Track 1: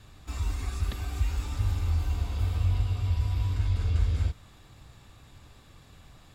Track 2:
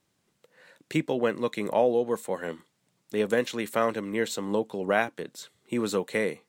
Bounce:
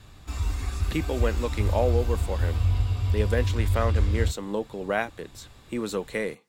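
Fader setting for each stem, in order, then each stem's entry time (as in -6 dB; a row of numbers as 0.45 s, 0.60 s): +2.5 dB, -2.0 dB; 0.00 s, 0.00 s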